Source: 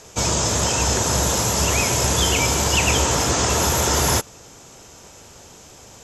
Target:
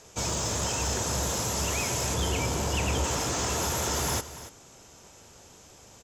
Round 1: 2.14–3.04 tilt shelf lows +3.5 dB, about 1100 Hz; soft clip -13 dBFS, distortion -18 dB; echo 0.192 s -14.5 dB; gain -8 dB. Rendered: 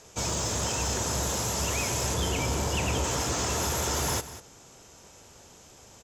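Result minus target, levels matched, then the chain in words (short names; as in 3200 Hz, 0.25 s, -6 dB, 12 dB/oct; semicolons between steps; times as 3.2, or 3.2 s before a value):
echo 92 ms early
2.14–3.04 tilt shelf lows +3.5 dB, about 1100 Hz; soft clip -13 dBFS, distortion -18 dB; echo 0.284 s -14.5 dB; gain -8 dB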